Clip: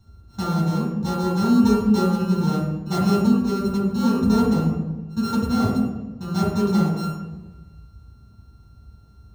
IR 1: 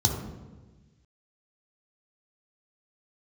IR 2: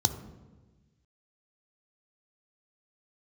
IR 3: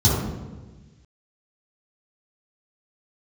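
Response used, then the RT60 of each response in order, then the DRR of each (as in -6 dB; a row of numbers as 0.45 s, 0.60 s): 3; 1.3 s, 1.3 s, 1.3 s; 1.0 dB, 8.5 dB, -8.5 dB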